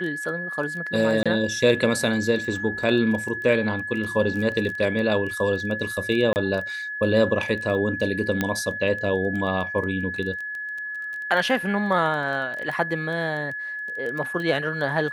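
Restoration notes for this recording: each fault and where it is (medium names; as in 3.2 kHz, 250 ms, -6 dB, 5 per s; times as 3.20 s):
crackle 11 per s -29 dBFS
whine 1.7 kHz -29 dBFS
1.23–1.26 s: dropout 26 ms
6.33–6.36 s: dropout 29 ms
8.41 s: pop -9 dBFS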